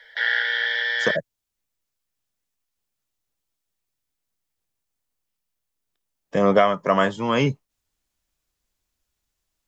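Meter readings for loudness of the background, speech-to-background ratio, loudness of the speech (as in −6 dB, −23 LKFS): −22.5 LKFS, 0.5 dB, −22.0 LKFS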